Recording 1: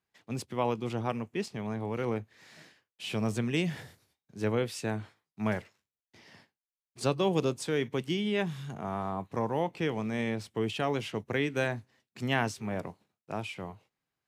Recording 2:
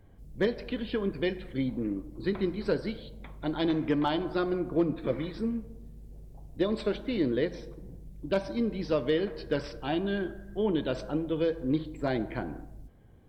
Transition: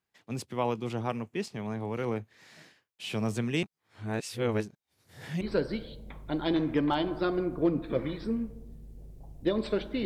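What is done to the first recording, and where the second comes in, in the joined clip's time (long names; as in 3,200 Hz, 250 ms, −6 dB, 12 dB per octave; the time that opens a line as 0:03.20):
recording 1
0:03.63–0:05.41: reverse
0:05.41: continue with recording 2 from 0:02.55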